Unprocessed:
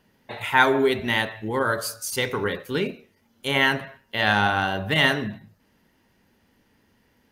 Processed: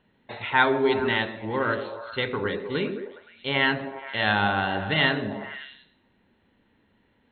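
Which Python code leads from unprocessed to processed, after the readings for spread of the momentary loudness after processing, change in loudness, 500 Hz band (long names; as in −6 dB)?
14 LU, −2.5 dB, −1.5 dB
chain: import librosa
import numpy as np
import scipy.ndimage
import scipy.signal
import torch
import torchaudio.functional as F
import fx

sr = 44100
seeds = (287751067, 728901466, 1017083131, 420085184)

y = fx.brickwall_lowpass(x, sr, high_hz=4300.0)
y = fx.echo_stepped(y, sr, ms=104, hz=270.0, octaves=0.7, feedback_pct=70, wet_db=-4)
y = F.gain(torch.from_numpy(y), -2.5).numpy()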